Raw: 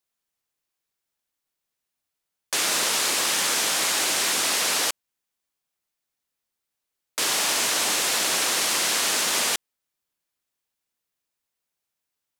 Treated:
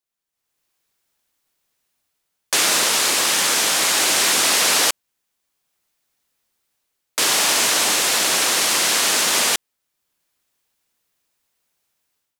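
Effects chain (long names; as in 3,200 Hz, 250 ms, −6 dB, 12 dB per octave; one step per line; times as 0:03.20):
automatic gain control gain up to 14 dB
level −3.5 dB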